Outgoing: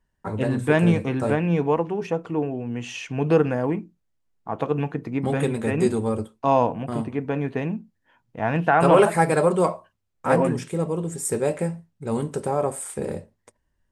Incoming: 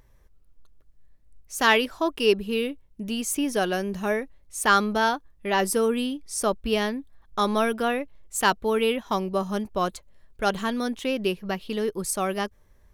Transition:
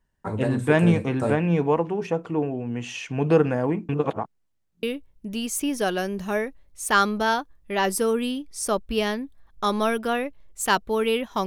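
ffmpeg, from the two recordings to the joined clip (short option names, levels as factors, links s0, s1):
-filter_complex "[0:a]apad=whole_dur=11.46,atrim=end=11.46,asplit=2[s0][s1];[s0]atrim=end=3.892[s2];[s1]atrim=start=3.888:end=4.832,asetpts=PTS-STARTPTS,areverse[s3];[1:a]atrim=start=2.578:end=9.21[s4];[s2][s3]acrossfade=d=0.004:c1=hsin:c2=hsin[s5];[s5][s4]acrossfade=d=0.004:c1=hsin:c2=hsin"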